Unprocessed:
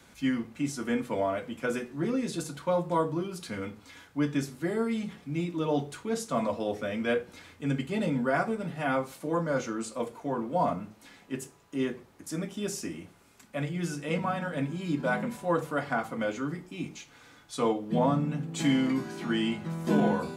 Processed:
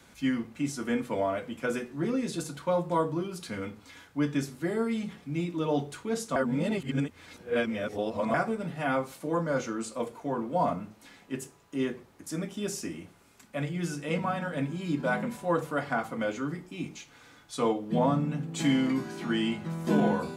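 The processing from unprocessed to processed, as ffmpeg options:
-filter_complex "[0:a]asplit=3[s0][s1][s2];[s0]atrim=end=6.362[s3];[s1]atrim=start=6.358:end=8.342,asetpts=PTS-STARTPTS,areverse[s4];[s2]atrim=start=8.338[s5];[s3][s4]acrossfade=d=0.004:c1=hsin:c2=hsin[s6];[s6][s5]acrossfade=d=0.004:c1=hsin:c2=hsin"

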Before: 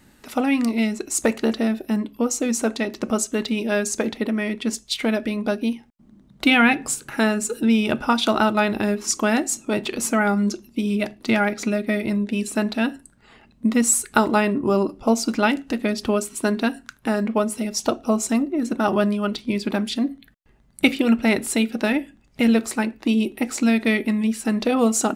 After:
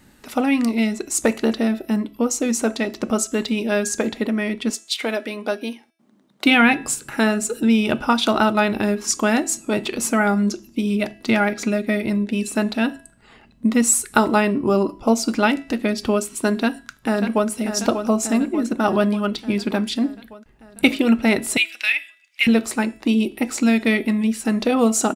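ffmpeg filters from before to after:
-filter_complex "[0:a]asettb=1/sr,asplit=3[s0][s1][s2];[s0]atrim=end=4.704[s3];[s1]atrim=start=4.7:end=6.46,asetpts=PTS-STARTPTS,afade=t=in:d=0.004:c=qsin,afade=t=out:st=1.756:d=0.004:c=qsin,highpass=360[s4];[s2]atrim=start=6.456[s5];[s3][s4]acrossfade=d=0.004:c1=hsin:c2=qsin[s6];[s6][s5]acrossfade=d=0.004:c1=qsin:c2=hsin,asplit=2[s7][s8];[s8]afade=t=in:st=16.57:d=0.01,afade=t=out:st=17.48:d=0.01,aecho=0:1:590|1180|1770|2360|2950|3540|4130|4720|5310:0.421697|0.274103|0.178167|0.115808|0.0752755|0.048929|0.0318039|0.0206725|0.0134371[s9];[s7][s9]amix=inputs=2:normalize=0,asettb=1/sr,asplit=3[s10][s11][s12];[s10]atrim=end=21.574[s13];[s11]atrim=start=21.57:end=22.47,asetpts=PTS-STARTPTS,afade=t=in:d=0.004:c=qsin,afade=t=out:st=0.896:d=0.004:c=qsin,highpass=f=2400:t=q:w=3.3[s14];[s12]atrim=start=22.466[s15];[s13][s14]acrossfade=d=0.004:c1=hsin:c2=qsin[s16];[s16][s15]acrossfade=d=0.004:c1=qsin:c2=hsin,bandreject=f=329.2:t=h:w=4,bandreject=f=658.4:t=h:w=4,bandreject=f=987.6:t=h:w=4,bandreject=f=1316.8:t=h:w=4,bandreject=f=1646:t=h:w=4,bandreject=f=1975.2:t=h:w=4,bandreject=f=2304.4:t=h:w=4,bandreject=f=2633.6:t=h:w=4,bandreject=f=2962.8:t=h:w=4,bandreject=f=3292:t=h:w=4,bandreject=f=3621.2:t=h:w=4,bandreject=f=3950.4:t=h:w=4,bandreject=f=4279.6:t=h:w=4,bandreject=f=4608.8:t=h:w=4,bandreject=f=4938:t=h:w=4,bandreject=f=5267.2:t=h:w=4,bandreject=f=5596.4:t=h:w=4,bandreject=f=5925.6:t=h:w=4,bandreject=f=6254.8:t=h:w=4,bandreject=f=6584:t=h:w=4,bandreject=f=6913.2:t=h:w=4,bandreject=f=7242.4:t=h:w=4,bandreject=f=7571.6:t=h:w=4,bandreject=f=7900.8:t=h:w=4,bandreject=f=8230:t=h:w=4,bandreject=f=8559.2:t=h:w=4,bandreject=f=8888.4:t=h:w=4,bandreject=f=9217.6:t=h:w=4,bandreject=f=9546.8:t=h:w=4,bandreject=f=9876:t=h:w=4,bandreject=f=10205.2:t=h:w=4,bandreject=f=10534.4:t=h:w=4,bandreject=f=10863.6:t=h:w=4,bandreject=f=11192.8:t=h:w=4,bandreject=f=11522:t=h:w=4,bandreject=f=11851.2:t=h:w=4,bandreject=f=12180.4:t=h:w=4,bandreject=f=12509.6:t=h:w=4,bandreject=f=12838.8:t=h:w=4,volume=1.19"

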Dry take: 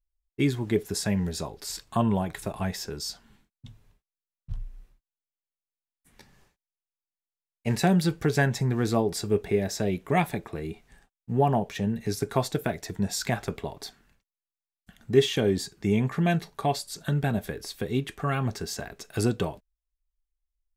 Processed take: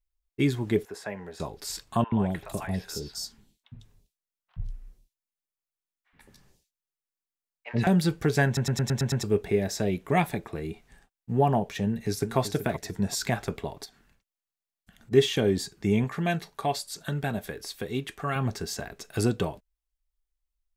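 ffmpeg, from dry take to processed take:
-filter_complex "[0:a]asettb=1/sr,asplit=3[s0][s1][s2];[s0]atrim=end=0.854[s3];[s1]atrim=start=0.85:end=1.4,asetpts=PTS-STARTPTS,afade=t=in:d=0.004:c=qsin,afade=t=out:st=0.546:d=0.004:c=qsin,acrossover=split=390 2300:gain=0.112 1 0.158[s4][s5][s6];[s4][s5][s6]amix=inputs=3:normalize=0[s7];[s2]atrim=start=1.396[s8];[s3][s7]acrossfade=d=0.004:c1=hsin:c2=qsin[s9];[s9][s8]acrossfade=d=0.004:c1=qsin:c2=hsin,asettb=1/sr,asplit=3[s10][s11][s12];[s10]atrim=end=2.044[s13];[s11]atrim=start=2.04:end=7.87,asetpts=PTS-STARTPTS,afade=t=in:d=0.004:c=qsin,afade=t=out:st=5.826:d=0.004:c=qsin,acrossover=split=730|3400[s14][s15][s16];[s14]adelay=80[s17];[s16]adelay=150[s18];[s17][s15][s18]amix=inputs=3:normalize=0,atrim=end_sample=257103[s19];[s12]atrim=start=7.866[s20];[s13][s19]acrossfade=d=0.004:c1=hsin:c2=qsin[s21];[s21][s20]acrossfade=d=0.004:c1=qsin:c2=hsin,asplit=2[s22][s23];[s23]afade=t=in:st=11.85:d=0.01,afade=t=out:st=12.38:d=0.01,aecho=0:1:380|760|1140:0.281838|0.0704596|0.0176149[s24];[s22][s24]amix=inputs=2:normalize=0,asplit=3[s25][s26][s27];[s25]afade=t=out:st=13.84:d=0.02[s28];[s26]acompressor=threshold=0.00316:ratio=3:attack=3.2:release=140:knee=1:detection=peak,afade=t=in:st=13.84:d=0.02,afade=t=out:st=15.11:d=0.02[s29];[s27]afade=t=in:st=15.11:d=0.02[s30];[s28][s29][s30]amix=inputs=3:normalize=0,asettb=1/sr,asplit=3[s31][s32][s33];[s31]atrim=end=16.044[s34];[s32]atrim=start=16.04:end=18.36,asetpts=PTS-STARTPTS,afade=t=in:d=0.004:c=qsin,afade=t=out:st=2.316:d=0.004:c=qsin,lowshelf=f=350:g=-6[s35];[s33]atrim=start=18.356[s36];[s34][s35]acrossfade=d=0.004:c1=hsin:c2=qsin[s37];[s37][s36]acrossfade=d=0.004:c1=qsin:c2=hsin,asplit=8[s38][s39][s40][s41][s42][s43][s44][s45];[s38]atrim=end=8.572[s46];[s39]atrim=start=8.458:end=8.572[s47];[s40]atrim=start=8.458:end=8.572[s48];[s41]atrim=start=8.458:end=8.572[s49];[s42]atrim=start=8.458:end=8.572[s50];[s43]atrim=start=8.458:end=8.572[s51];[s44]atrim=start=8.458:end=8.572[s52];[s45]atrim=start=9.228[s53];[s46][s47]acrossfade=d=0.004:c1=hsin:c2=hsin[s54];[s54][s48]acrossfade=d=0.004:c1=hsin:c2=hsin[s55];[s55][s49]acrossfade=d=0.004:c1=hsin:c2=hsin[s56];[s56][s50]acrossfade=d=0.004:c1=hsin:c2=hsin[s57];[s57][s51]acrossfade=d=0.004:c1=hsin:c2=hsin[s58];[s58][s52]acrossfade=d=0.004:c1=hsin:c2=hsin[s59];[s59][s53]acrossfade=d=0.004:c1=hsin:c2=hsin"

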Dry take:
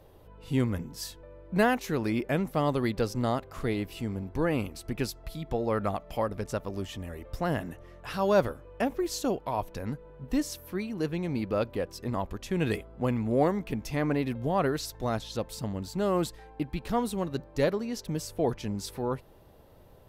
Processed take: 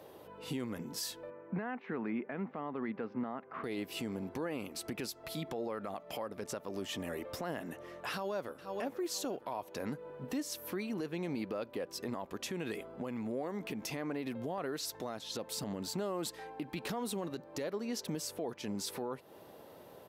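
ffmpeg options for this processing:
-filter_complex "[0:a]asettb=1/sr,asplit=3[s0][s1][s2];[s0]atrim=end=1.304[s3];[s1]atrim=start=1.3:end=3.64,asetpts=PTS-STARTPTS,afade=t=in:d=0.004:c=qsin,afade=t=out:st=2.336:d=0.004:c=qsin,highpass=150,equalizer=f=220:t=q:w=4:g=4,equalizer=f=340:t=q:w=4:g=-4,equalizer=f=560:t=q:w=4:g=-7,lowpass=f=2200:w=0.5412,lowpass=f=2200:w=1.3066[s4];[s2]atrim=start=3.636[s5];[s3][s4]acrossfade=d=0.004:c1=hsin:c2=qsin[s6];[s6][s5]acrossfade=d=0.004:c1=qsin:c2=hsin,asplit=2[s7][s8];[s8]afade=t=in:st=8.1:d=0.01,afade=t=out:st=8.7:d=0.01,aecho=0:1:480|960|1440:0.149624|0.0598494|0.0239398[s9];[s7][s9]amix=inputs=2:normalize=0,asettb=1/sr,asplit=3[s10][s11][s12];[s10]atrim=end=12.404[s13];[s11]atrim=start=12.4:end=14.58,asetpts=PTS-STARTPTS,afade=t=in:d=0.004:c=qsin,afade=t=out:st=2.176:d=0.004:c=qsin,acompressor=threshold=0.0158:ratio=3:attack=3.2:release=140:knee=1:detection=peak[s14];[s12]atrim=start=14.576[s15];[s13][s14]acrossfade=d=0.004:c1=hsin:c2=qsin[s16];[s16][s15]acrossfade=d=0.004:c1=qsin:c2=hsin,asplit=3[s17][s18][s19];[s17]afade=t=out:st=15.2:d=0.02[s20];[s18]acompressor=threshold=0.0398:ratio=6:attack=3.2:release=140:knee=1:detection=peak,afade=t=in:st=15.2:d=0.02,afade=t=out:st=17.22:d=0.02[s21];[s19]afade=t=in:st=17.22:d=0.02[s22];[s20][s21][s22]amix=inputs=3:normalize=0,highpass=230,acompressor=threshold=0.0112:ratio=4,alimiter=level_in=2.99:limit=0.0631:level=0:latency=1:release=29,volume=0.335,volume=1.78"

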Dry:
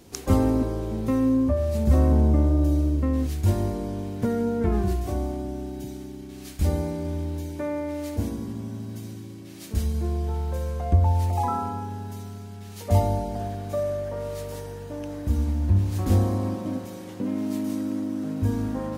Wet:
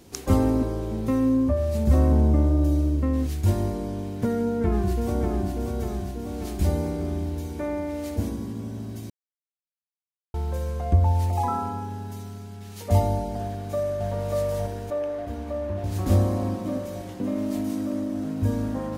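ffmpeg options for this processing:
-filter_complex "[0:a]asplit=2[s0][s1];[s1]afade=t=in:st=4.38:d=0.01,afade=t=out:st=5.55:d=0.01,aecho=0:1:590|1180|1770|2360|2950|3540|4130|4720|5310|5900:0.630957|0.410122|0.266579|0.173277|0.11263|0.0732094|0.0475861|0.030931|0.0201051|0.0130683[s2];[s0][s2]amix=inputs=2:normalize=0,asplit=2[s3][s4];[s4]afade=t=in:st=13.41:d=0.01,afade=t=out:st=14.07:d=0.01,aecho=0:1:590|1180|1770|2360|2950|3540|4130|4720|5310|5900|6490|7080:0.944061|0.755249|0.604199|0.483359|0.386687|0.30935|0.24748|0.197984|0.158387|0.12671|0.101368|0.0810942[s5];[s3][s5]amix=inputs=2:normalize=0,asettb=1/sr,asplit=3[s6][s7][s8];[s6]atrim=end=14.904[s9];[s7]atrim=start=14.9:end=15.84,asetpts=PTS-STARTPTS,afade=t=in:d=0.004:c=qsin,afade=t=out:st=0.936:d=0.004:c=qsin,bass=f=250:g=-13,treble=f=4000:g=-11[s10];[s8]atrim=start=15.836[s11];[s9][s10]acrossfade=d=0.004:c1=hsin:c2=qsin[s12];[s12][s11]acrossfade=d=0.004:c1=qsin:c2=hsin,asplit=3[s13][s14][s15];[s13]atrim=end=9.1,asetpts=PTS-STARTPTS,afade=t=out:st=9.096:d=0.004:c=hsin[s16];[s14]atrim=start=9.1:end=10.34,asetpts=PTS-STARTPTS,volume=0[s17];[s15]atrim=start=10.34,asetpts=PTS-STARTPTS,afade=t=in:d=0.004:c=hsin[s18];[s16][s17][s18]concat=n=3:v=0:a=1"

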